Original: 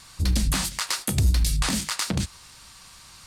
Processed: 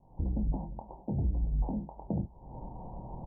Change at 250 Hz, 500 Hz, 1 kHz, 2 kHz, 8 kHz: −5.0 dB, −4.0 dB, −9.5 dB, below −40 dB, below −40 dB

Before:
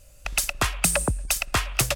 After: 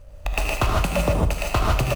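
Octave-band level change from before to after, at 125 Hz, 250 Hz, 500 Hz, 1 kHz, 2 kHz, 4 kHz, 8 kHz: +7.5, +6.0, +7.0, +5.0, −1.5, −2.5, −11.0 decibels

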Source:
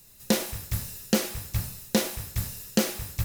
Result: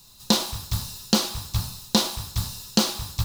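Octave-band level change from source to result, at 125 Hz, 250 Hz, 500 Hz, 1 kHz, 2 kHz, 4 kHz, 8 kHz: +3.0, +2.0, −1.5, +7.0, −0.5, +9.0, +3.5 decibels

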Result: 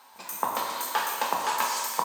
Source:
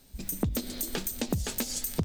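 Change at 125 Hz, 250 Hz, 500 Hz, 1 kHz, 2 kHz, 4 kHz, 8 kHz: below −20 dB, −13.0 dB, +1.5 dB, +20.5 dB, +10.5 dB, +4.0 dB, +1.0 dB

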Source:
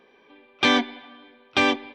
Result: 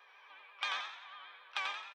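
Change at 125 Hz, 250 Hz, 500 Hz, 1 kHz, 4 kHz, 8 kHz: below −40 dB, below −40 dB, −30.0 dB, −15.0 dB, −15.5 dB, −16.0 dB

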